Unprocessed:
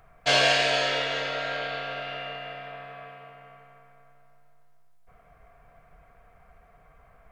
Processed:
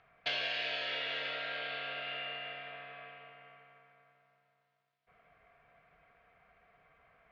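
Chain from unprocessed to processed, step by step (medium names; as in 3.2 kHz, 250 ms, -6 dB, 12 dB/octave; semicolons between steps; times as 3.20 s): distance through air 270 m; compression 6:1, threshold -32 dBFS, peak gain reduction 12 dB; frequency weighting D; trim -7.5 dB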